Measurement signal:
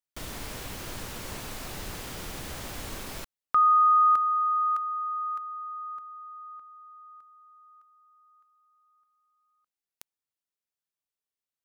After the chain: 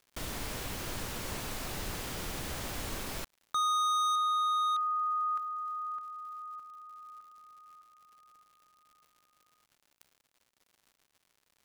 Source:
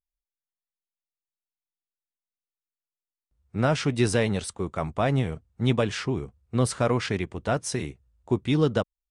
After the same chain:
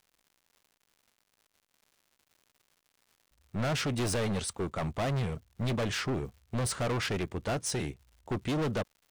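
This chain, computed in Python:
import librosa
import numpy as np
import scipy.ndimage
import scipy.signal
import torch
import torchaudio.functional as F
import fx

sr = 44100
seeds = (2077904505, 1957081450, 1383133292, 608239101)

y = fx.dmg_crackle(x, sr, seeds[0], per_s=180.0, level_db=-52.0)
y = np.clip(10.0 ** (28.0 / 20.0) * y, -1.0, 1.0) / 10.0 ** (28.0 / 20.0)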